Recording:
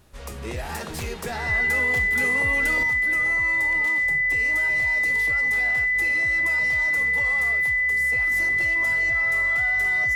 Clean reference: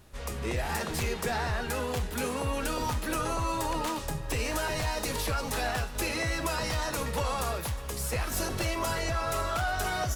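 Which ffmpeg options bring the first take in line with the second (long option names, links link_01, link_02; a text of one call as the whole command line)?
ffmpeg -i in.wav -af "bandreject=frequency=2000:width=30,asetnsamples=nb_out_samples=441:pad=0,asendcmd='2.83 volume volume 7dB',volume=0dB" out.wav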